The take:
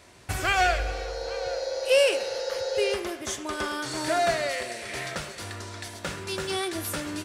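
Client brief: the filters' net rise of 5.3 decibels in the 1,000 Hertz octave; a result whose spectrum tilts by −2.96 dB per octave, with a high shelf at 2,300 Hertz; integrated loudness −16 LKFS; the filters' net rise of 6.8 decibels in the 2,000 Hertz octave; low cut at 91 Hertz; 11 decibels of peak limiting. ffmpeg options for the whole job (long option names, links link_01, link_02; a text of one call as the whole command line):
ffmpeg -i in.wav -af "highpass=91,equalizer=frequency=1000:width_type=o:gain=7,equalizer=frequency=2000:width_type=o:gain=8.5,highshelf=frequency=2300:gain=-3.5,volume=12dB,alimiter=limit=-5dB:level=0:latency=1" out.wav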